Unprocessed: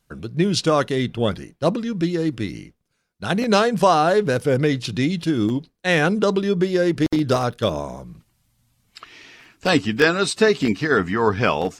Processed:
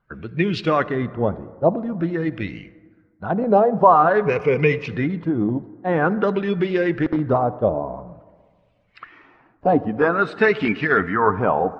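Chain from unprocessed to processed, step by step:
spectral magnitudes quantised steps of 15 dB
auto-filter low-pass sine 0.49 Hz 740–2,500 Hz
0:04.25–0:04.88: EQ curve with evenly spaced ripples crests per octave 0.79, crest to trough 12 dB
on a send: convolution reverb RT60 1.7 s, pre-delay 47 ms, DRR 17 dB
on the sum: level −1.5 dB

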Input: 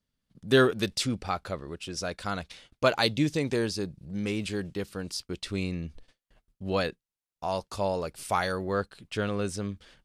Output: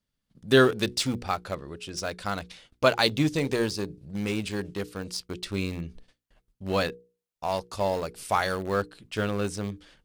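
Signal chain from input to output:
in parallel at −9.5 dB: centre clipping without the shift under −27 dBFS
on the sum: mains-hum notches 60/120/180/240/300/360/420/480 Hz

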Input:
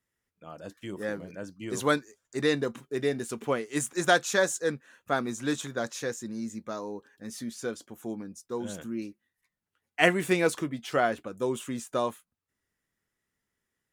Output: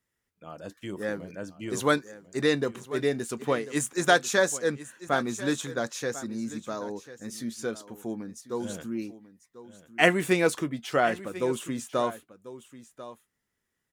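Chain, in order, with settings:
single-tap delay 1,043 ms −15.5 dB
level +1.5 dB

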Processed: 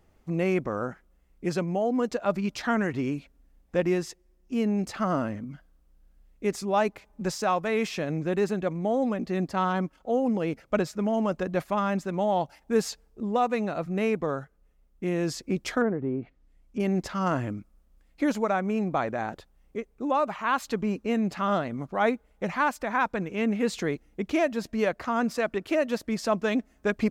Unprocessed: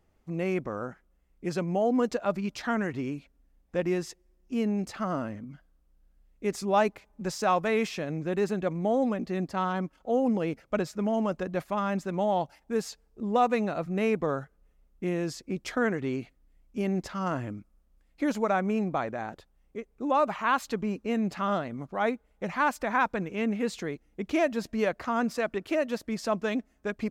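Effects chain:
0:15.81–0:16.80: treble cut that deepens with the level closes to 830 Hz, closed at −27.5 dBFS
speech leveller within 5 dB 0.5 s
level +2 dB

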